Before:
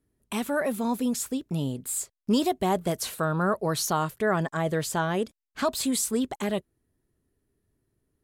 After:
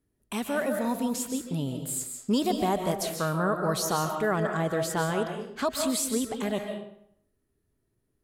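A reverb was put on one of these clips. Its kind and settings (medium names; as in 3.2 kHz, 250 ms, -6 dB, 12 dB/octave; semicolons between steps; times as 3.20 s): algorithmic reverb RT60 0.68 s, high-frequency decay 0.8×, pre-delay 105 ms, DRR 4.5 dB; trim -2 dB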